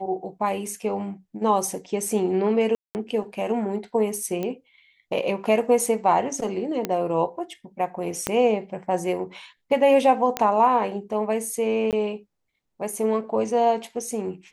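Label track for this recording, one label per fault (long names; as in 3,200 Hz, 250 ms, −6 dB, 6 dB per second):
2.750000	2.950000	drop-out 199 ms
4.430000	4.430000	click −16 dBFS
6.850000	6.850000	click −11 dBFS
8.270000	8.270000	click −8 dBFS
10.370000	10.370000	click −8 dBFS
11.910000	11.930000	drop-out 18 ms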